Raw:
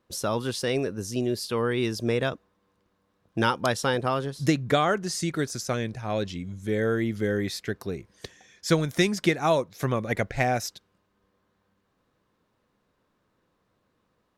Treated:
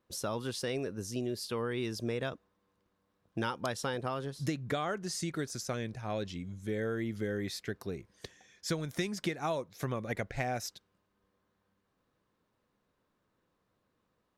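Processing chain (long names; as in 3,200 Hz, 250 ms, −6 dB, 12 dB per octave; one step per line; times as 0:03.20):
downward compressor 3 to 1, threshold −25 dBFS, peak gain reduction 7.5 dB
level −6 dB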